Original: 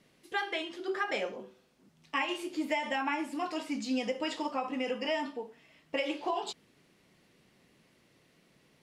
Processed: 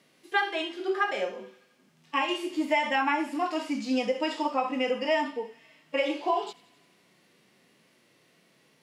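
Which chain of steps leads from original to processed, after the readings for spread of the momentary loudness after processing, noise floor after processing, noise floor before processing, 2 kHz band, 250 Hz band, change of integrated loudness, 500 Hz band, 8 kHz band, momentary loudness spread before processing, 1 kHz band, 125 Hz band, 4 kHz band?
8 LU, −65 dBFS, −67 dBFS, +5.5 dB, +4.5 dB, +5.5 dB, +6.0 dB, 0.0 dB, 8 LU, +6.5 dB, can't be measured, +3.5 dB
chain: high-pass filter 310 Hz 6 dB per octave
harmonic and percussive parts rebalanced percussive −15 dB
on a send: delay with a high-pass on its return 87 ms, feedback 69%, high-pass 1,700 Hz, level −20 dB
on the sum: level +8 dB

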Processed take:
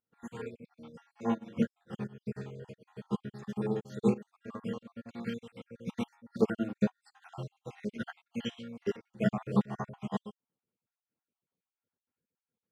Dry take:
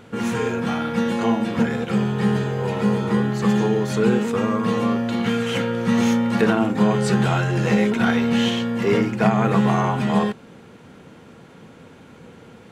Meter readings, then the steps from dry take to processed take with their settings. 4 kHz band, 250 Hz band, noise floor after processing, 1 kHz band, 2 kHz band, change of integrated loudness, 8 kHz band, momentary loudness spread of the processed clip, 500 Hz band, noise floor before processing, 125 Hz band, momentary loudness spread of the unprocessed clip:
−20.0 dB, −15.5 dB, below −85 dBFS, −19.5 dB, −20.5 dB, −15.5 dB, below −20 dB, 16 LU, −15.0 dB, −46 dBFS, −17.0 dB, 4 LU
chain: time-frequency cells dropped at random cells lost 52%
fake sidechain pumping 87 BPM, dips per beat 1, −10 dB, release 168 ms
expander for the loud parts 2.5 to 1, over −42 dBFS
level −5.5 dB

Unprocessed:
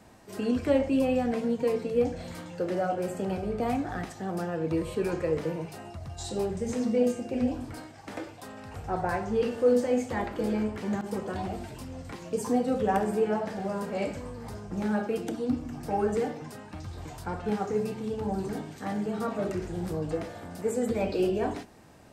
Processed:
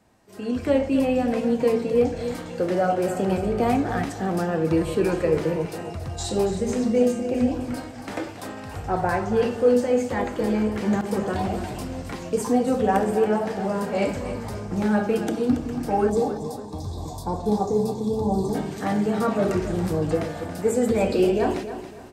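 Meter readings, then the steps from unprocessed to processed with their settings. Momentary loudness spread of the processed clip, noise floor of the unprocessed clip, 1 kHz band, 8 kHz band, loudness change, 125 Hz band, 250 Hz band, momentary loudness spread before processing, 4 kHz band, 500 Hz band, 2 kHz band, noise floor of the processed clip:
11 LU, −47 dBFS, +6.5 dB, +7.0 dB, +6.0 dB, +7.0 dB, +6.0 dB, 15 LU, +6.5 dB, +6.0 dB, +6.5 dB, −37 dBFS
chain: gain on a spectral selection 0:16.10–0:18.55, 1,200–3,300 Hz −19 dB
automatic gain control gain up to 16 dB
on a send: repeating echo 278 ms, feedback 32%, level −11 dB
on the sum: level −7.5 dB

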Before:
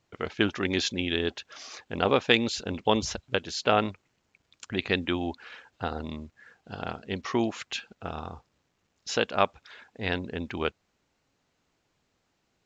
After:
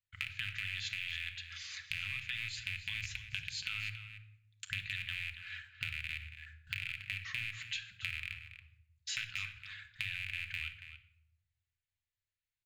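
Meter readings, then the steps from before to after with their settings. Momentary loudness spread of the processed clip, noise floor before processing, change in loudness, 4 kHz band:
11 LU, −75 dBFS, −10.5 dB, −8.5 dB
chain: loose part that buzzes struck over −36 dBFS, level −13 dBFS
noise gate −52 dBFS, range −20 dB
elliptic band-stop filter 110–1,800 Hz, stop band 60 dB
parametric band 5,600 Hz −11 dB 0.34 octaves
brickwall limiter −16.5 dBFS, peak gain reduction 11 dB
downward compressor 6 to 1, threshold −38 dBFS, peak gain reduction 13.5 dB
slap from a distant wall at 48 metres, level −10 dB
rectangular room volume 2,500 cubic metres, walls furnished, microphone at 1.5 metres
level +1.5 dB

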